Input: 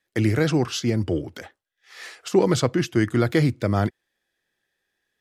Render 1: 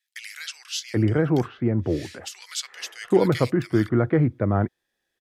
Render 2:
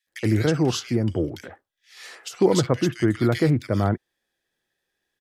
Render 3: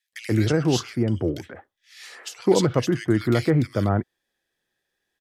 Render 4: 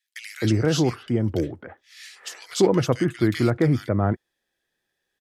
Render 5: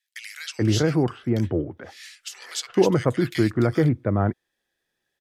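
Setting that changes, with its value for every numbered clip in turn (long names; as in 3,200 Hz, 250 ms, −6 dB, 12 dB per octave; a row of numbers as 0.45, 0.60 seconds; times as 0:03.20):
multiband delay without the direct sound, delay time: 780, 70, 130, 260, 430 milliseconds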